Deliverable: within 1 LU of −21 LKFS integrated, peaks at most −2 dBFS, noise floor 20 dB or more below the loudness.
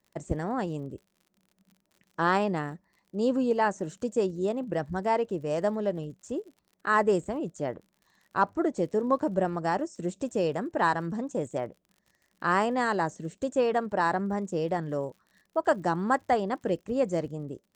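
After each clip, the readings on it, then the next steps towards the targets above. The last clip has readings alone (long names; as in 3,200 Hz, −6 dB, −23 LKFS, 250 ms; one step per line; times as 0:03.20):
crackle rate 57 per second; integrated loudness −29.0 LKFS; sample peak −11.0 dBFS; target loudness −21.0 LKFS
→ click removal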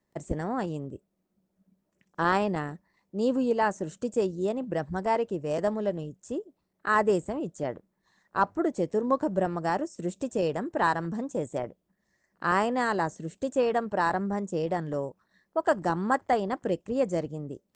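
crackle rate 0.17 per second; integrated loudness −29.0 LKFS; sample peak −11.0 dBFS; target loudness −21.0 LKFS
→ level +8 dB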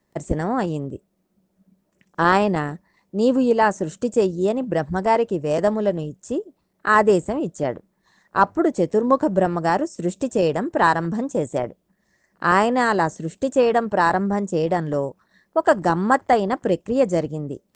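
integrated loudness −21.0 LKFS; sample peak −3.0 dBFS; background noise floor −70 dBFS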